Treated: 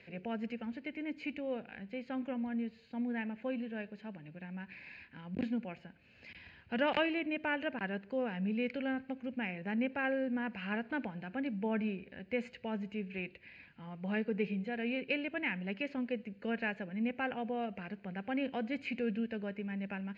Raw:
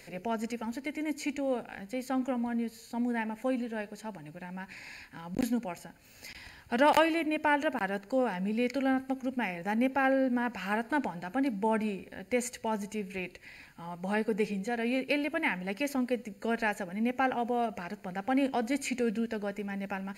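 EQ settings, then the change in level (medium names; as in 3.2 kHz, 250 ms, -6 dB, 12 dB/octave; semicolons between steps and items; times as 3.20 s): cabinet simulation 120–2700 Hz, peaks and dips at 130 Hz -8 dB, 270 Hz -6 dB, 860 Hz -7 dB, 1.3 kHz -6 dB, 2 kHz -6 dB; peaking EQ 650 Hz -11 dB 3 oct; +5.0 dB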